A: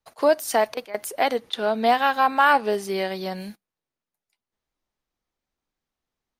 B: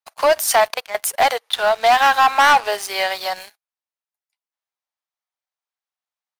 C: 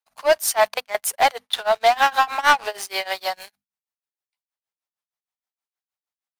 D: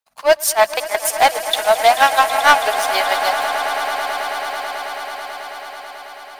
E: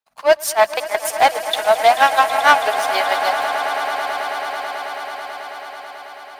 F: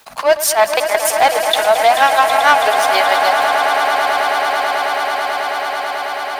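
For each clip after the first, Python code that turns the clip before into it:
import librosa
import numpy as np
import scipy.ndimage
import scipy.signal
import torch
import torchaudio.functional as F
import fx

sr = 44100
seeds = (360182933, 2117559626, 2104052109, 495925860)

y1 = scipy.signal.sosfilt(scipy.signal.butter(4, 670.0, 'highpass', fs=sr, output='sos'), x)
y1 = fx.leveller(y1, sr, passes=3)
y2 = fx.hum_notches(y1, sr, base_hz=50, count=5)
y2 = y2 * (1.0 - 0.95 / 2.0 + 0.95 / 2.0 * np.cos(2.0 * np.pi * 6.4 * (np.arange(len(y2)) / sr)))
y3 = fx.echo_swell(y2, sr, ms=109, loudest=8, wet_db=-15.5)
y3 = F.gain(torch.from_numpy(y3), 4.0).numpy()
y4 = fx.highpass(y3, sr, hz=51.0, slope=6)
y4 = fx.high_shelf(y4, sr, hz=4000.0, db=-6.0)
y5 = fx.env_flatten(y4, sr, amount_pct=50)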